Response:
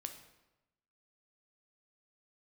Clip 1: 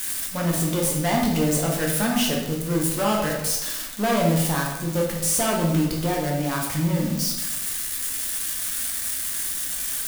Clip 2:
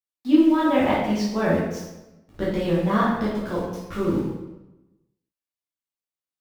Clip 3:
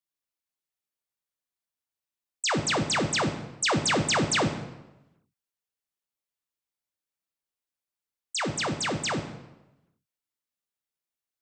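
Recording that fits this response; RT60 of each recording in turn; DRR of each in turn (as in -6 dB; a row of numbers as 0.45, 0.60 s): 3; 1.0, 1.0, 1.0 s; -2.0, -8.0, 6.0 dB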